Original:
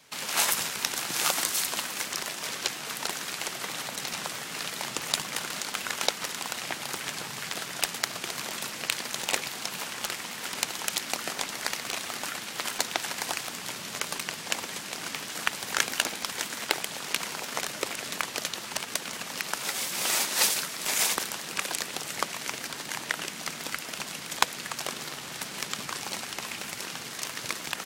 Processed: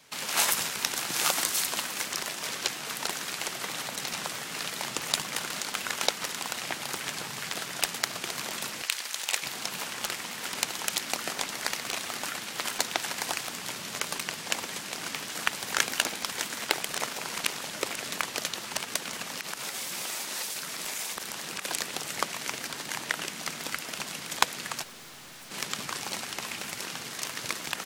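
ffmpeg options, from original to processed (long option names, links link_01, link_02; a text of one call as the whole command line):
ffmpeg -i in.wav -filter_complex "[0:a]asettb=1/sr,asplit=3[link_01][link_02][link_03];[link_01]atrim=end=8.824[link_04];[link_02]atrim=start=8.82:end=9.43,asetpts=PTS-STARTPTS,afade=type=in:duration=0.004:curve=qsin,afade=type=out:start_time=0.606:duration=0.004:curve=qsin,highpass=frequency=1400:poles=1[link_05];[link_03]atrim=start=9.426[link_06];[link_04][link_05]acrossfade=duration=0.004:curve1=hsin:curve2=qsin[link_07];[link_07][link_06]acrossfade=duration=0.004:curve1=qsin:curve2=hsin,asettb=1/sr,asplit=3[link_08][link_09][link_10];[link_08]atrim=end=19.294[link_11];[link_09]atrim=start=19.29:end=21.65,asetpts=PTS-STARTPTS,afade=type=in:duration=0.004:curve=qsin,afade=type=out:start_time=2.356:duration=0.004:curve=qsin,acompressor=threshold=-31dB:ratio=6:attack=3.2:release=140:knee=1:detection=peak[link_12];[link_10]atrim=start=21.646[link_13];[link_11][link_12]acrossfade=duration=0.004:curve1=hsin:curve2=qsin[link_14];[link_14][link_13]acrossfade=duration=0.004:curve1=qsin:curve2=hsin,asplit=3[link_15][link_16][link_17];[link_15]afade=type=out:start_time=24.82:duration=0.02[link_18];[link_16]aeval=exprs='(tanh(178*val(0)+0.3)-tanh(0.3))/178':channel_layout=same,afade=type=in:start_time=24.82:duration=0.02,afade=type=out:start_time=25.5:duration=0.02[link_19];[link_17]afade=type=in:start_time=25.5:duration=0.02[link_20];[link_18][link_19][link_20]amix=inputs=3:normalize=0,asplit=3[link_21][link_22][link_23];[link_21]atrim=end=16.892[link_24];[link_22]atrim=start=16.888:end=17.722,asetpts=PTS-STARTPTS,areverse[link_25];[link_23]atrim=start=17.718[link_26];[link_24][link_25]acrossfade=duration=0.004:curve1=hsin:curve2=hsin[link_27];[link_27][link_26]acrossfade=duration=0.004:curve1=hsin:curve2=hsin" out.wav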